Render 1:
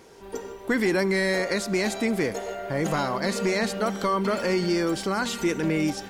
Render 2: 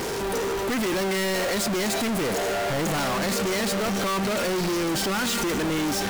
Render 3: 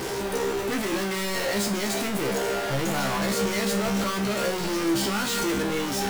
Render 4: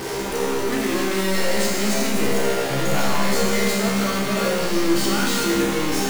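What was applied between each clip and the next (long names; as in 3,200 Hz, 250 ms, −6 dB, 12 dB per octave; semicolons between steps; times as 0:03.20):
power curve on the samples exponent 0.35; soft clipping −24 dBFS, distortion −13 dB
tuned comb filter 67 Hz, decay 0.35 s, harmonics all, mix 90%; level +6.5 dB
four-comb reverb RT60 1.8 s, combs from 26 ms, DRR −1 dB; level +1 dB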